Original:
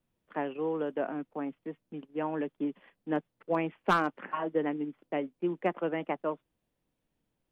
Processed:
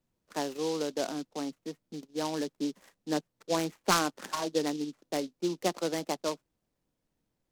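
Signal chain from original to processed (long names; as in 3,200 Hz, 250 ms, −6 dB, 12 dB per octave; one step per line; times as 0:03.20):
short delay modulated by noise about 4,300 Hz, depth 0.077 ms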